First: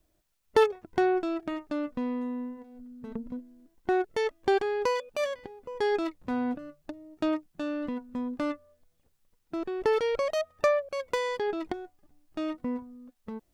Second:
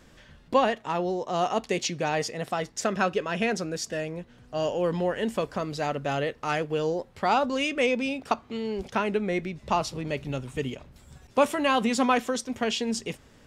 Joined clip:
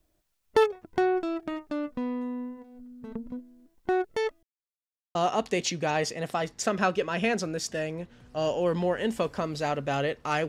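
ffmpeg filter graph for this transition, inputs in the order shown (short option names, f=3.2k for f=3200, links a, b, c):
-filter_complex "[0:a]apad=whole_dur=10.48,atrim=end=10.48,asplit=2[a][b];[a]atrim=end=4.43,asetpts=PTS-STARTPTS,afade=t=out:st=4.426:d=0.004:c=hsin[c];[b]atrim=start=4.43:end=5.15,asetpts=PTS-STARTPTS,volume=0[d];[1:a]atrim=start=1.33:end=6.66,asetpts=PTS-STARTPTS,afade=t=in:d=0.004:c=hsin[e];[c][d][e]concat=n=3:v=0:a=1"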